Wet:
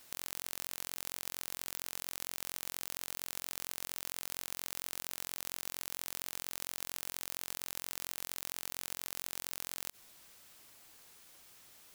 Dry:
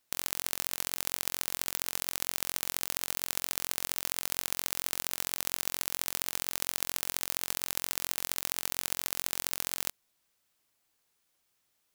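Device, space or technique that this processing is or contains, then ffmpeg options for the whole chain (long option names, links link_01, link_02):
de-esser from a sidechain: -filter_complex "[0:a]asplit=2[link_01][link_02];[link_02]highpass=frequency=5700:poles=1,apad=whole_len=526824[link_03];[link_01][link_03]sidechaincompress=threshold=-51dB:ratio=4:attack=1.1:release=35,volume=17dB"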